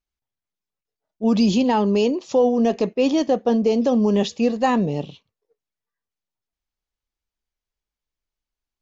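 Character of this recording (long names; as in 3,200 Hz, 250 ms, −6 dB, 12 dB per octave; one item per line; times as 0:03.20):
background noise floor −89 dBFS
spectral slope −5.5 dB per octave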